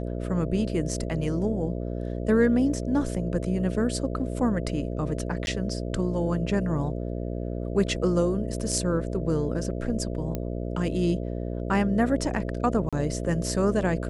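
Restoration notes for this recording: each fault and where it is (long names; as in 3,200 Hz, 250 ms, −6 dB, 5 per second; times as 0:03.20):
mains buzz 60 Hz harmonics 11 −31 dBFS
0:05.46–0:05.47: drop-out
0:10.35: click −16 dBFS
0:12.89–0:12.93: drop-out 36 ms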